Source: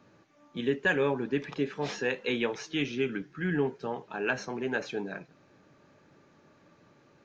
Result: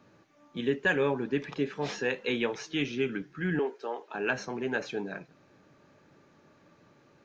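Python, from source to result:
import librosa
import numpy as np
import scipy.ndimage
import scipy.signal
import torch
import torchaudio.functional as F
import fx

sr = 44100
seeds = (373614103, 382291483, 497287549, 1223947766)

y = fx.highpass(x, sr, hz=330.0, slope=24, at=(3.59, 4.15))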